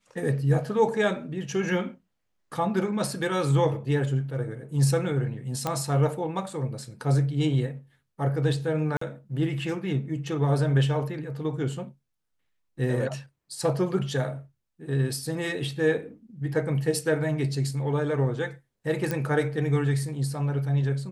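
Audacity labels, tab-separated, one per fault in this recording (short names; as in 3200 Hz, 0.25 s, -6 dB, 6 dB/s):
5.670000	5.670000	pop -13 dBFS
8.970000	9.010000	gap 44 ms
19.110000	19.110000	pop -14 dBFS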